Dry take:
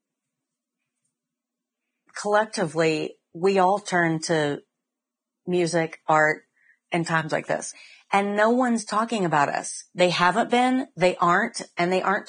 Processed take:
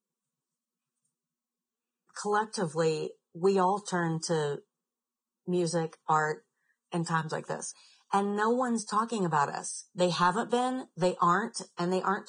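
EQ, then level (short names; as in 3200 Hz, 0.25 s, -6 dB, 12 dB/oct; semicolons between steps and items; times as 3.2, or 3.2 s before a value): fixed phaser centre 430 Hz, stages 8; -3.5 dB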